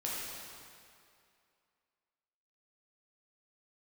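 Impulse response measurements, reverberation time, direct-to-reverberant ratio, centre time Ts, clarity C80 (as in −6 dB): 2.4 s, −6.0 dB, 144 ms, −0.5 dB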